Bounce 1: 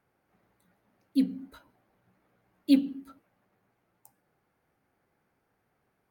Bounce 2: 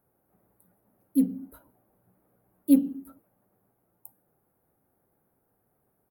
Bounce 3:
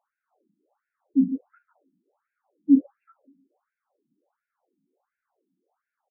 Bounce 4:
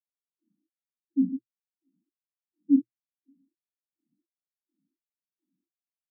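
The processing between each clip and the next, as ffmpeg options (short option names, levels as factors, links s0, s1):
-af "firequalizer=gain_entry='entry(550,0);entry(2100,-14);entry(5500,-18);entry(11000,10)':delay=0.05:min_phase=1,volume=1.33"
-filter_complex "[0:a]asplit=2[s0][s1];[s1]adelay=147,lowpass=f=1900:p=1,volume=0.316,asplit=2[s2][s3];[s3]adelay=147,lowpass=f=1900:p=1,volume=0.31,asplit=2[s4][s5];[s5]adelay=147,lowpass=f=1900:p=1,volume=0.31[s6];[s0][s2][s4][s6]amix=inputs=4:normalize=0,afftfilt=real='re*between(b*sr/1024,230*pow(2000/230,0.5+0.5*sin(2*PI*1.4*pts/sr))/1.41,230*pow(2000/230,0.5+0.5*sin(2*PI*1.4*pts/sr))*1.41)':imag='im*between(b*sr/1024,230*pow(2000/230,0.5+0.5*sin(2*PI*1.4*pts/sr))/1.41,230*pow(2000/230,0.5+0.5*sin(2*PI*1.4*pts/sr))*1.41)':win_size=1024:overlap=0.75,volume=1.33"
-af "asuperpass=centerf=200:order=20:qfactor=0.93,volume=0.631"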